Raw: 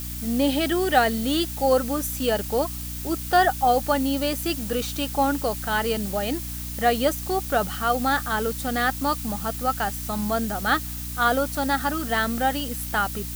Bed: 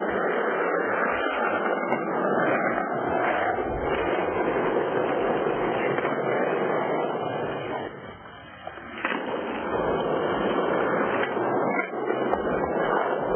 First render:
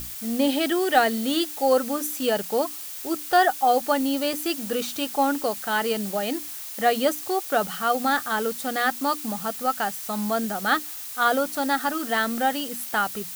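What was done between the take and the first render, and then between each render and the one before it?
mains-hum notches 60/120/180/240/300 Hz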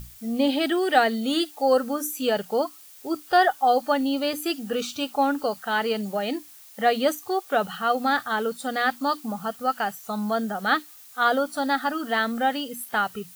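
noise reduction from a noise print 12 dB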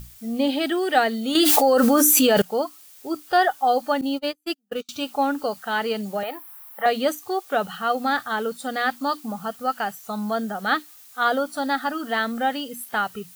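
0:01.35–0:02.42: envelope flattener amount 100%
0:04.01–0:04.89: noise gate −26 dBFS, range −42 dB
0:06.23–0:06.86: drawn EQ curve 100 Hz 0 dB, 230 Hz −18 dB, 1,000 Hz +11 dB, 2,200 Hz −1 dB, 6,600 Hz −15 dB, 12,000 Hz +6 dB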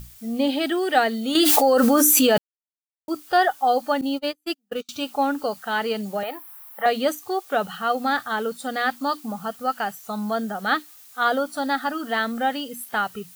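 0:02.38–0:03.08: silence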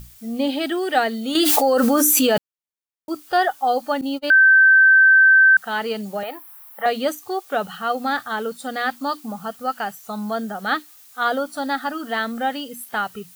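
0:04.30–0:05.57: beep over 1,550 Hz −8.5 dBFS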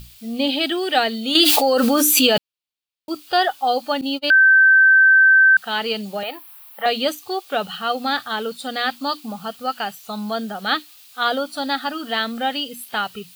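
flat-topped bell 3,400 Hz +8.5 dB 1.2 octaves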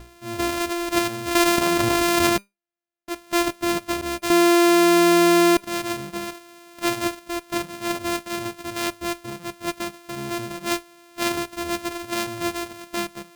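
samples sorted by size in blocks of 128 samples
tuned comb filter 200 Hz, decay 0.19 s, harmonics all, mix 40%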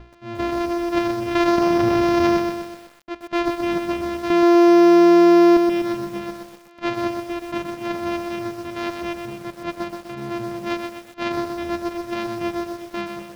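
high-frequency loss of the air 230 metres
feedback echo at a low word length 125 ms, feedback 55%, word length 7 bits, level −5 dB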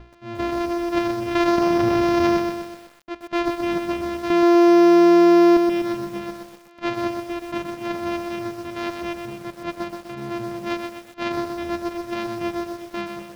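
level −1 dB

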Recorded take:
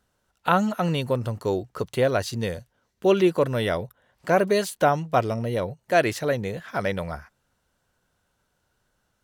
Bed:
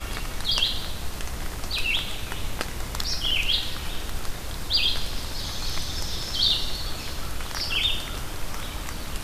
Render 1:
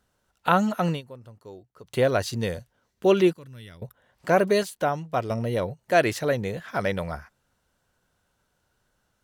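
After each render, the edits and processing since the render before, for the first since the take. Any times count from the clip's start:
0:00.89–0:01.97: duck −18.5 dB, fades 0.13 s
0:03.33–0:03.82: guitar amp tone stack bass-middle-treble 6-0-2
0:04.63–0:05.30: clip gain −5 dB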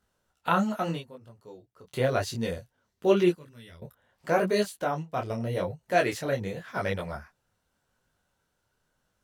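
micro pitch shift up and down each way 30 cents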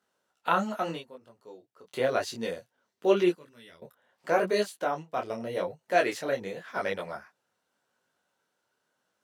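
high-pass filter 270 Hz 12 dB per octave
high-shelf EQ 9,400 Hz −6 dB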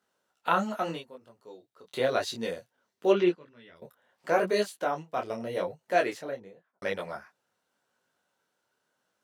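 0:01.50–0:02.38: parametric band 3,800 Hz +8 dB 0.22 octaves
0:03.12–0:03.75: low-pass filter 4,800 Hz → 2,500 Hz
0:05.81–0:06.82: fade out and dull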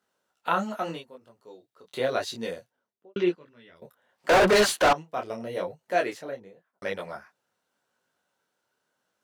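0:02.54–0:03.16: fade out and dull
0:04.29–0:04.93: mid-hump overdrive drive 32 dB, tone 3,700 Hz, clips at −11.5 dBFS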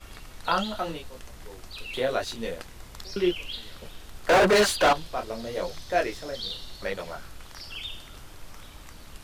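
mix in bed −13 dB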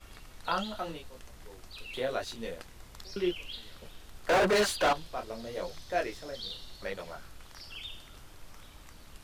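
level −6 dB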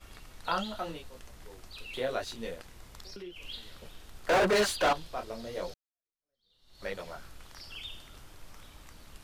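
0:02.55–0:03.45: downward compressor, threshold −41 dBFS
0:05.74–0:06.85: fade in exponential

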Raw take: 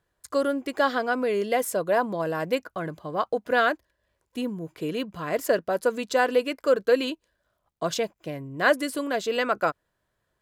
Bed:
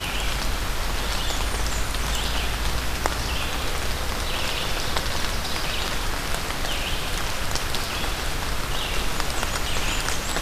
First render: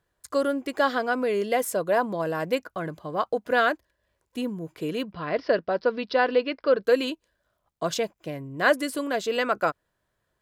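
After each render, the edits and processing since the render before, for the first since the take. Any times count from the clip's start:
0:05.12–0:06.83: Butterworth low-pass 5,400 Hz 96 dB per octave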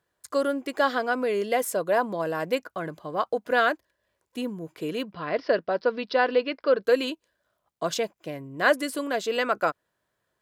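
high-pass filter 170 Hz 6 dB per octave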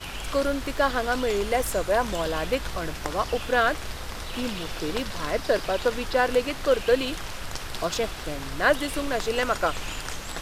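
mix in bed −8.5 dB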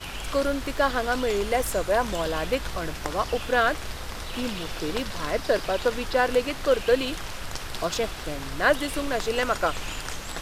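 no processing that can be heard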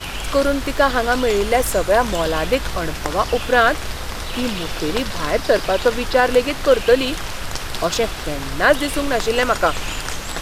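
level +7.5 dB
brickwall limiter −3 dBFS, peak gain reduction 2.5 dB

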